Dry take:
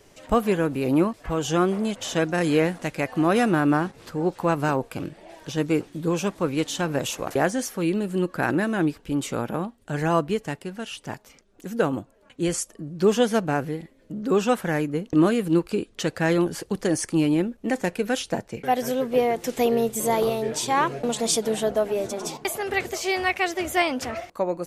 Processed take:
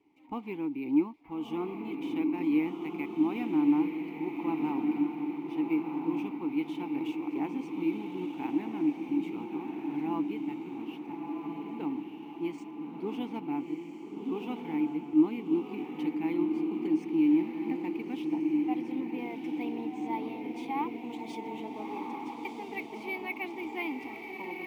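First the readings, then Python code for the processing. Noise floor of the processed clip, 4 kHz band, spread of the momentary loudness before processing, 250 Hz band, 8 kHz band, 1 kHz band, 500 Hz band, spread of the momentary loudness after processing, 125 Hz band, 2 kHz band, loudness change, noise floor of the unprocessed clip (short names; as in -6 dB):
-44 dBFS, under -15 dB, 9 LU, -4.0 dB, under -30 dB, -11.5 dB, -14.5 dB, 11 LU, -18.0 dB, -13.5 dB, -8.0 dB, -56 dBFS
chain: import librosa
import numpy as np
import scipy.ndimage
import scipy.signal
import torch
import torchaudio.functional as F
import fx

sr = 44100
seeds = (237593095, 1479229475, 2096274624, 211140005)

p1 = fx.dynamic_eq(x, sr, hz=3000.0, q=0.85, threshold_db=-42.0, ratio=4.0, max_db=5)
p2 = p1 + fx.echo_diffused(p1, sr, ms=1342, feedback_pct=52, wet_db=-3.5, dry=0)
p3 = fx.mod_noise(p2, sr, seeds[0], snr_db=27)
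p4 = fx.vowel_filter(p3, sr, vowel='u')
p5 = np.interp(np.arange(len(p4)), np.arange(len(p4))[::3], p4[::3])
y = F.gain(torch.from_numpy(p5), -1.5).numpy()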